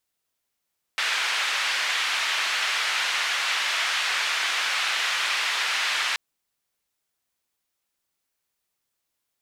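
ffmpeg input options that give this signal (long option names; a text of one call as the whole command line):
ffmpeg -f lavfi -i "anoisesrc=color=white:duration=5.18:sample_rate=44100:seed=1,highpass=frequency=1400,lowpass=frequency=2800,volume=-9.3dB" out.wav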